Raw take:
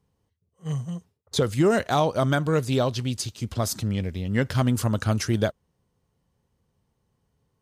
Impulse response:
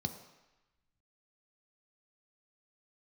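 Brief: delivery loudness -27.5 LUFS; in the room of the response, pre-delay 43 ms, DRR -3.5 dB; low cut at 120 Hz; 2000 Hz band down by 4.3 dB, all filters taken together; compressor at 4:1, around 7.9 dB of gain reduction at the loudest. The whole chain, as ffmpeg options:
-filter_complex "[0:a]highpass=120,equalizer=f=2k:t=o:g=-6,acompressor=threshold=-27dB:ratio=4,asplit=2[a][b];[1:a]atrim=start_sample=2205,adelay=43[c];[b][c]afir=irnorm=-1:irlink=0,volume=2.5dB[d];[a][d]amix=inputs=2:normalize=0,volume=-7.5dB"

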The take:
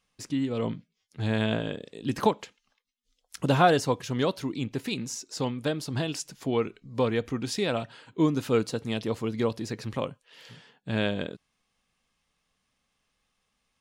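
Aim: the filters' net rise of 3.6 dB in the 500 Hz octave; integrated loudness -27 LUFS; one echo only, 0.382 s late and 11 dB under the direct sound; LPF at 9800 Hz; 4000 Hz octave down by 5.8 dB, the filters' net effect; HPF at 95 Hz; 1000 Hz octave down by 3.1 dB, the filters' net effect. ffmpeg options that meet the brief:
-af "highpass=95,lowpass=9.8k,equalizer=f=500:t=o:g=6,equalizer=f=1k:t=o:g=-8,equalizer=f=4k:t=o:g=-7,aecho=1:1:382:0.282,volume=0.5dB"

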